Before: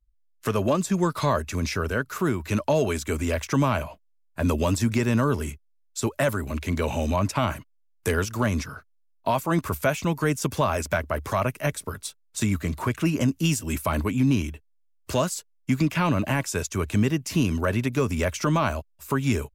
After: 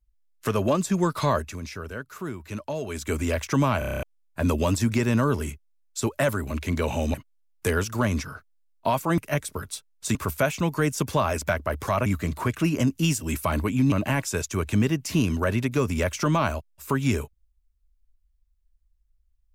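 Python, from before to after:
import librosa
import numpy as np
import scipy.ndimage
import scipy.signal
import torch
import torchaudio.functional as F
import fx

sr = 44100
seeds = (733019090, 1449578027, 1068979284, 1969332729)

y = fx.edit(x, sr, fx.fade_down_up(start_s=1.37, length_s=1.72, db=-9.0, fade_s=0.21),
    fx.stutter_over(start_s=3.79, slice_s=0.03, count=8),
    fx.cut(start_s=7.14, length_s=0.41),
    fx.move(start_s=11.5, length_s=0.97, to_s=9.59),
    fx.cut(start_s=14.33, length_s=1.8), tone=tone)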